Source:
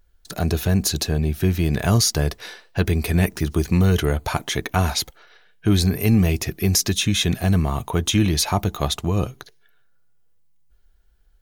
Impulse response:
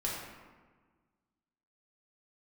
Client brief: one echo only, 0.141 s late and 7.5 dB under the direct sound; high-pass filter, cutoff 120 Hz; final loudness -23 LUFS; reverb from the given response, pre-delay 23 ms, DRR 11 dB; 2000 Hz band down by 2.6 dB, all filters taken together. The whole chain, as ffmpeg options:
-filter_complex "[0:a]highpass=120,equalizer=f=2k:t=o:g=-3.5,aecho=1:1:141:0.422,asplit=2[a][b];[1:a]atrim=start_sample=2205,adelay=23[c];[b][c]afir=irnorm=-1:irlink=0,volume=-15.5dB[d];[a][d]amix=inputs=2:normalize=0,volume=-1dB"

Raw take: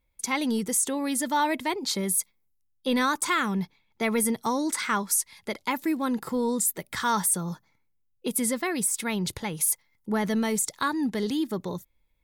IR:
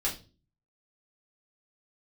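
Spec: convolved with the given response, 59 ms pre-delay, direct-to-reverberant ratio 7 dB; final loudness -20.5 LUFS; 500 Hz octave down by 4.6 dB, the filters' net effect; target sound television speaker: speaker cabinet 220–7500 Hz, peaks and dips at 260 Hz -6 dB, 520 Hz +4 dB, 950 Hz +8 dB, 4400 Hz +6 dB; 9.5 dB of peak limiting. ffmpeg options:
-filter_complex "[0:a]equalizer=f=500:t=o:g=-8,alimiter=limit=-23dB:level=0:latency=1,asplit=2[a][b];[1:a]atrim=start_sample=2205,adelay=59[c];[b][c]afir=irnorm=-1:irlink=0,volume=-13.5dB[d];[a][d]amix=inputs=2:normalize=0,highpass=f=220:w=0.5412,highpass=f=220:w=1.3066,equalizer=f=260:t=q:w=4:g=-6,equalizer=f=520:t=q:w=4:g=4,equalizer=f=950:t=q:w=4:g=8,equalizer=f=4.4k:t=q:w=4:g=6,lowpass=f=7.5k:w=0.5412,lowpass=f=7.5k:w=1.3066,volume=11.5dB"

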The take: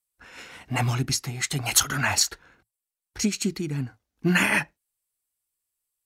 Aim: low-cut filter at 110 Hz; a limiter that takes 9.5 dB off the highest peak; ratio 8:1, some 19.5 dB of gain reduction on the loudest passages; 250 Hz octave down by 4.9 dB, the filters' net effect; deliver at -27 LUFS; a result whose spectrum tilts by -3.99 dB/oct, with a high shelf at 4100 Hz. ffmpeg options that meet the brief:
-af "highpass=110,equalizer=f=250:t=o:g=-7,highshelf=f=4.1k:g=6.5,acompressor=threshold=-30dB:ratio=8,volume=10dB,alimiter=limit=-15.5dB:level=0:latency=1"

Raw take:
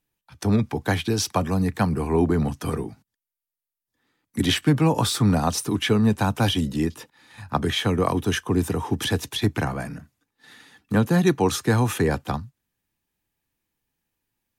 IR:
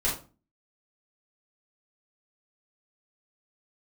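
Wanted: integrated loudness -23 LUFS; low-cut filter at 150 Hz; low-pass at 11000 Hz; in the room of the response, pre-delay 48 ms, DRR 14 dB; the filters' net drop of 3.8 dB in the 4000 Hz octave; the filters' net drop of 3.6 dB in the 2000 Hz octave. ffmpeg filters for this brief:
-filter_complex "[0:a]highpass=150,lowpass=11k,equalizer=f=2k:t=o:g=-4,equalizer=f=4k:t=o:g=-3.5,asplit=2[a][b];[1:a]atrim=start_sample=2205,adelay=48[c];[b][c]afir=irnorm=-1:irlink=0,volume=-23dB[d];[a][d]amix=inputs=2:normalize=0,volume=2dB"

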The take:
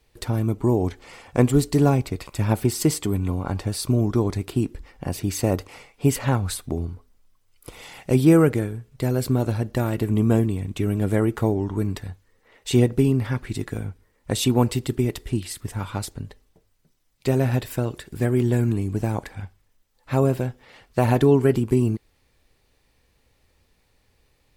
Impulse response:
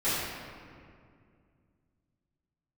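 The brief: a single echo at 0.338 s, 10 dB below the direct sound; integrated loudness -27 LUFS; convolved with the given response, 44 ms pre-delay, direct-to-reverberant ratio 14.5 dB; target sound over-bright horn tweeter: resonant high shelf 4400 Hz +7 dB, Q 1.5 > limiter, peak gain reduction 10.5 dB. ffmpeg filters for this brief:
-filter_complex "[0:a]aecho=1:1:338:0.316,asplit=2[a][b];[1:a]atrim=start_sample=2205,adelay=44[c];[b][c]afir=irnorm=-1:irlink=0,volume=-26.5dB[d];[a][d]amix=inputs=2:normalize=0,highshelf=f=4.4k:t=q:w=1.5:g=7,volume=-1.5dB,alimiter=limit=-15.5dB:level=0:latency=1"

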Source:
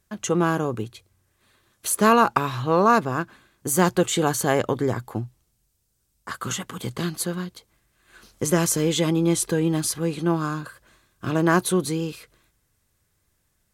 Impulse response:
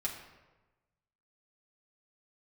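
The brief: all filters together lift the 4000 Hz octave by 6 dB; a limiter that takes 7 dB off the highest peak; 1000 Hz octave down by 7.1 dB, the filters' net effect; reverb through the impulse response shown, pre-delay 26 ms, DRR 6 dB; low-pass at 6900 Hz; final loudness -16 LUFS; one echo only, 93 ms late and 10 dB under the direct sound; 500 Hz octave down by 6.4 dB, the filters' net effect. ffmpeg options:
-filter_complex "[0:a]lowpass=6.9k,equalizer=f=500:t=o:g=-7,equalizer=f=1k:t=o:g=-7.5,equalizer=f=4k:t=o:g=8.5,alimiter=limit=-15dB:level=0:latency=1,aecho=1:1:93:0.316,asplit=2[a][b];[1:a]atrim=start_sample=2205,adelay=26[c];[b][c]afir=irnorm=-1:irlink=0,volume=-8.5dB[d];[a][d]amix=inputs=2:normalize=0,volume=10dB"

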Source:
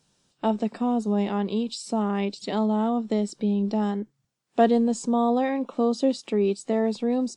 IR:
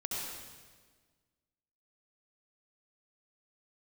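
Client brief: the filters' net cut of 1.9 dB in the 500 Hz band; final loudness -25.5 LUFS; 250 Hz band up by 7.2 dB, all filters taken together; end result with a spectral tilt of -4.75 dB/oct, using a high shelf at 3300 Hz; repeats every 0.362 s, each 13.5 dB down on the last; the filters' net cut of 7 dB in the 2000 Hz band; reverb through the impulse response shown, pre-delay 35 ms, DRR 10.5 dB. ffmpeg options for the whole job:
-filter_complex "[0:a]equalizer=f=250:t=o:g=9,equalizer=f=500:t=o:g=-4.5,equalizer=f=2k:t=o:g=-7,highshelf=f=3.3k:g=-5,aecho=1:1:362|724:0.211|0.0444,asplit=2[a][b];[1:a]atrim=start_sample=2205,adelay=35[c];[b][c]afir=irnorm=-1:irlink=0,volume=-13.5dB[d];[a][d]amix=inputs=2:normalize=0,volume=-6dB"

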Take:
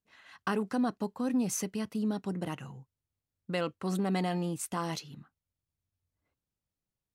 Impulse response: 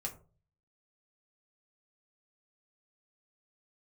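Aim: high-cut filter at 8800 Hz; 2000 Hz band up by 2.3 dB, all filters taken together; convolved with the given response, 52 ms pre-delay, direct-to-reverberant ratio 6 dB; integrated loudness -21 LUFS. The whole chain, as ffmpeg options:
-filter_complex "[0:a]lowpass=8.8k,equalizer=f=2k:t=o:g=3,asplit=2[a][b];[1:a]atrim=start_sample=2205,adelay=52[c];[b][c]afir=irnorm=-1:irlink=0,volume=-5.5dB[d];[a][d]amix=inputs=2:normalize=0,volume=10.5dB"

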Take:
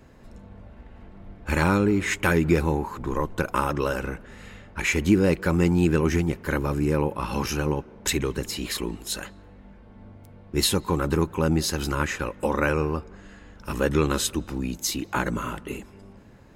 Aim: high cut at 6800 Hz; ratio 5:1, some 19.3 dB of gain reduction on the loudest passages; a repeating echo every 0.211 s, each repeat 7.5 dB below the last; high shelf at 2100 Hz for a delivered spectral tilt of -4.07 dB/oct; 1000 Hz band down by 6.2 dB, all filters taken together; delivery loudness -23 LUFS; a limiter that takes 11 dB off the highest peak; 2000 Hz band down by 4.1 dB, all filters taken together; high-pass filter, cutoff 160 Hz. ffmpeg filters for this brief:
-af "highpass=160,lowpass=6.8k,equalizer=f=1k:t=o:g=-7.5,equalizer=f=2k:t=o:g=-8,highshelf=f=2.1k:g=8.5,acompressor=threshold=-38dB:ratio=5,alimiter=level_in=7.5dB:limit=-24dB:level=0:latency=1,volume=-7.5dB,aecho=1:1:211|422|633|844|1055:0.422|0.177|0.0744|0.0312|0.0131,volume=20dB"

